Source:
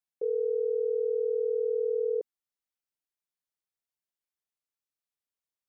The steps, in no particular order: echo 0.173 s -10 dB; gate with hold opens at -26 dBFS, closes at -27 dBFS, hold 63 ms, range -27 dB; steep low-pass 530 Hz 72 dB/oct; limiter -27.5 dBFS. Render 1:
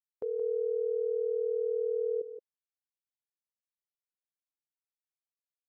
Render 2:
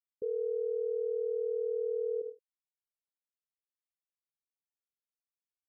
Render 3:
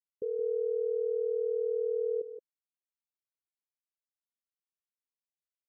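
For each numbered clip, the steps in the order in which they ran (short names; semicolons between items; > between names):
steep low-pass > gate with hold > limiter > echo; echo > gate with hold > limiter > steep low-pass; gate with hold > steep low-pass > limiter > echo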